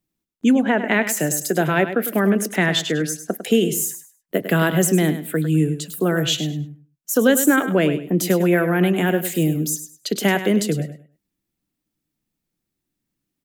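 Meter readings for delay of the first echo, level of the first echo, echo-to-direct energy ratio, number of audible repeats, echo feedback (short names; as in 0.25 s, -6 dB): 0.102 s, -11.0 dB, -11.0 dB, 2, 22%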